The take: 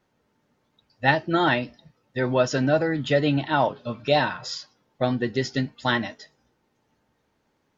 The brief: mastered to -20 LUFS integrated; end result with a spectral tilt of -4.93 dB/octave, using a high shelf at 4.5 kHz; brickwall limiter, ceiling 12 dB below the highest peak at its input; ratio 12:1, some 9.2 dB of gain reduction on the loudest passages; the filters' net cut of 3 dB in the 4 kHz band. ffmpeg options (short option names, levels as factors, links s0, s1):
-af "equalizer=f=4000:t=o:g=-8,highshelf=f=4500:g=8,acompressor=threshold=0.0631:ratio=12,volume=5.62,alimiter=limit=0.335:level=0:latency=1"